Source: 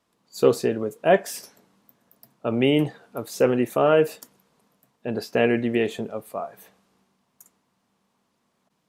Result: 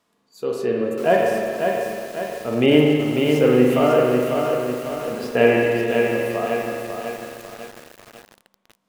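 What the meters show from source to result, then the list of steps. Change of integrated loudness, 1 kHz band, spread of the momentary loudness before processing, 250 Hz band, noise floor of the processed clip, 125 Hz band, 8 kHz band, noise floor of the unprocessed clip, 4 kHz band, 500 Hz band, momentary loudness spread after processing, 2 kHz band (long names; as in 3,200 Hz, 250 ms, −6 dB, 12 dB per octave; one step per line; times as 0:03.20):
+3.0 dB, +4.5 dB, 15 LU, +5.5 dB, −68 dBFS, +5.5 dB, 0.0 dB, −72 dBFS, +5.0 dB, +5.0 dB, 14 LU, +6.0 dB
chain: amplitude tremolo 1.1 Hz, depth 75%
low-shelf EQ 250 Hz −5 dB
spring reverb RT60 2.1 s, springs 40/51 ms, chirp 55 ms, DRR 0.5 dB
harmonic and percussive parts rebalanced harmonic +7 dB
feedback echo at a low word length 546 ms, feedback 55%, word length 6 bits, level −4.5 dB
level −1 dB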